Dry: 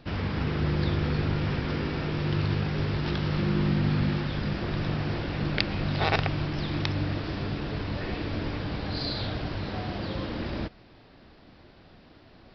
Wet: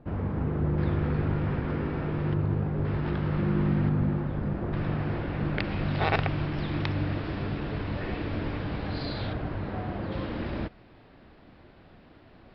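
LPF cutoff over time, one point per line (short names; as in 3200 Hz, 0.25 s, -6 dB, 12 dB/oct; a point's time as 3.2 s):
1000 Hz
from 0.78 s 1600 Hz
from 2.34 s 1000 Hz
from 2.85 s 1700 Hz
from 3.89 s 1100 Hz
from 4.73 s 2000 Hz
from 5.64 s 2900 Hz
from 9.33 s 1800 Hz
from 10.12 s 2900 Hz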